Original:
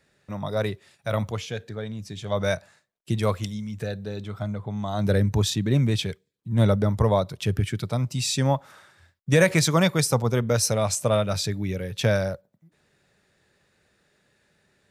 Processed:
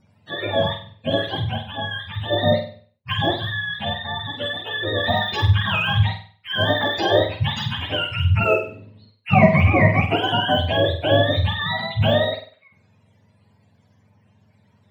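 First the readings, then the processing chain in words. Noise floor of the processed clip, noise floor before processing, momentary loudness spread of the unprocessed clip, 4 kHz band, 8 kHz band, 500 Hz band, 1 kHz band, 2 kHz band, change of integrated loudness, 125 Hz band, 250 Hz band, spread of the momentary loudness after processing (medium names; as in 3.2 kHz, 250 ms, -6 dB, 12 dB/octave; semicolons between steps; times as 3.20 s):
-60 dBFS, -70 dBFS, 13 LU, +9.0 dB, under -20 dB, +4.0 dB, +8.5 dB, +9.0 dB, +4.5 dB, +2.5 dB, +1.5 dB, 11 LU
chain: spectrum inverted on a logarithmic axis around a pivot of 600 Hz; de-esser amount 100%; on a send: flutter echo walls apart 8.3 m, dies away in 0.44 s; on the sum: trim +6.5 dB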